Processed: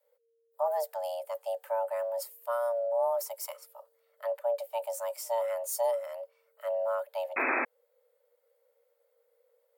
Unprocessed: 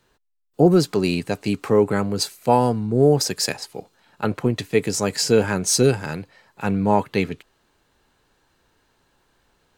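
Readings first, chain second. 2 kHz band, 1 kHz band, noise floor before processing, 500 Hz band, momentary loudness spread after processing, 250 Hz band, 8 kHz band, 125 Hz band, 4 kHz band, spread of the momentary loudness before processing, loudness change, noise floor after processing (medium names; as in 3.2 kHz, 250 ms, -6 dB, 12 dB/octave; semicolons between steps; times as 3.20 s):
-6.5 dB, -9.0 dB, -66 dBFS, -9.5 dB, 11 LU, -29.5 dB, -16.5 dB, under -40 dB, -23.0 dB, 12 LU, -12.0 dB, -74 dBFS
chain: FFT filter 110 Hz 0 dB, 230 Hz -17 dB, 5.4 kHz -22 dB, 9.5 kHz -10 dB, 14 kHz +2 dB; frequency shift +460 Hz; painted sound noise, 7.36–7.65 s, 240–2600 Hz -27 dBFS; trim -1.5 dB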